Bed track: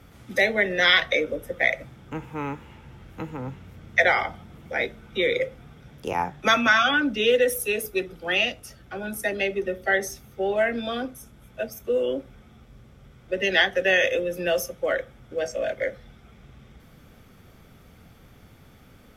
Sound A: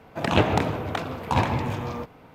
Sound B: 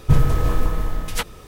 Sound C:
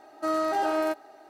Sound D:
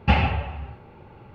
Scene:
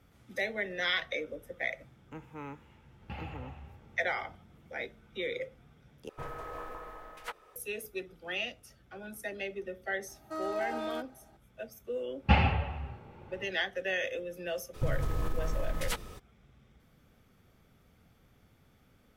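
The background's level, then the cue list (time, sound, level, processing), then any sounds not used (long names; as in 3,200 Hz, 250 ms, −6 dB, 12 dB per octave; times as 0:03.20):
bed track −12.5 dB
0:03.02: mix in D −14.5 dB + downward compressor 3 to 1, threshold −26 dBFS
0:06.09: overwrite with B −10 dB + three-way crossover with the lows and the highs turned down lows −23 dB, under 440 Hz, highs −14 dB, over 2,200 Hz
0:10.08: mix in C −10.5 dB
0:12.21: mix in D −4.5 dB, fades 0.10 s
0:14.73: mix in B −5.5 dB, fades 0.02 s + downward compressor, threshold −21 dBFS
not used: A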